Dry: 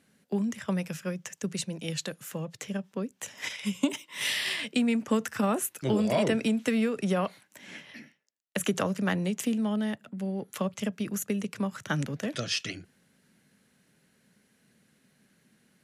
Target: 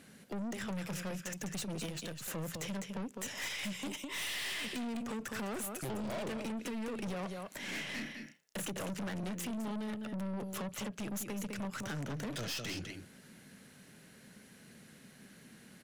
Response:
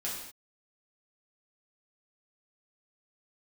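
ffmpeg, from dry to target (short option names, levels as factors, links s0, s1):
-filter_complex "[0:a]asettb=1/sr,asplit=3[s0][s1][s2];[s0]atrim=end=1.864[s3];[s1]atrim=start=1.86:end=2.28,asetpts=PTS-STARTPTS,afade=t=in:d=0.004:c=qsin,afade=t=out:st=0.416:d=0.004:c=qsin,aeval=exprs='if(lt(val(0),0),0.251*val(0),val(0))':c=same[s4];[s2]atrim=start=2.276[s5];[s3][s4]acrossfade=d=0.004:c1=hsin:c2=qsin[s6];[s6][s5]acrossfade=d=0.004:c1=qsin:c2=hsin,acompressor=threshold=0.0126:ratio=6,asettb=1/sr,asplit=3[s7][s8][s9];[s7]atrim=end=7.704[s10];[s8]atrim=start=7.7:end=8.7,asetpts=PTS-STARTPTS,afade=t=in:d=0.004:c=qsin,afade=t=out:st=0.996:d=0.004:c=qsin,asplit=2[s11][s12];[s12]adelay=32,volume=0.668[s13];[s11][s13]amix=inputs=2:normalize=0,atrim=end_sample=44100[s14];[s9]atrim=start=8.696[s15];[s10][s14]acrossfade=d=0.004:c1=hsin:c2=qsin[s16];[s16][s15]acrossfade=d=0.004:c1=qsin:c2=hsin,aecho=1:1:205:0.316,aeval=exprs='(tanh(200*val(0)+0.3)-tanh(0.3))/200':c=same,volume=2.99"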